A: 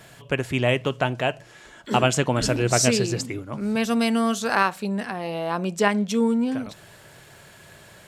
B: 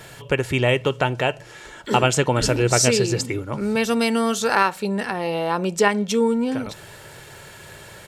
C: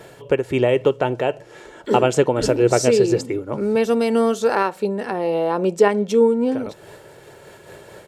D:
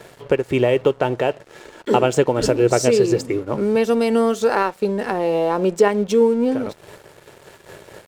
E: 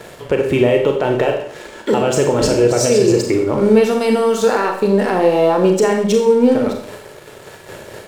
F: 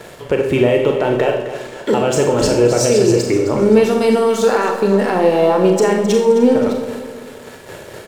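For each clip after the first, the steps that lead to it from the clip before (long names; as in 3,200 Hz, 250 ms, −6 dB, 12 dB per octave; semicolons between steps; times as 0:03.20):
comb filter 2.2 ms, depth 33%; in parallel at 0 dB: downward compressor, threshold −28 dBFS, peak gain reduction 13.5 dB
parametric band 430 Hz +12.5 dB 2.2 octaves; amplitude modulation by smooth noise, depth 55%; level −4.5 dB
in parallel at +2 dB: downward compressor, threshold −23 dBFS, peak gain reduction 13.5 dB; on the sum: dead-zone distortion −39 dBFS; level −2.5 dB
brickwall limiter −12 dBFS, peak gain reduction 10 dB; four-comb reverb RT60 0.6 s, combs from 29 ms, DRR 2.5 dB; level +5.5 dB
repeating echo 262 ms, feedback 42%, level −12 dB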